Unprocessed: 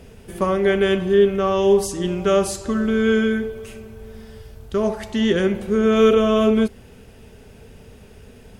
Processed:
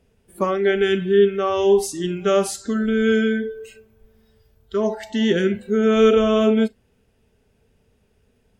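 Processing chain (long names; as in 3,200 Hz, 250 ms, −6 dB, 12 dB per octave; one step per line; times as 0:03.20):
noise reduction from a noise print of the clip's start 18 dB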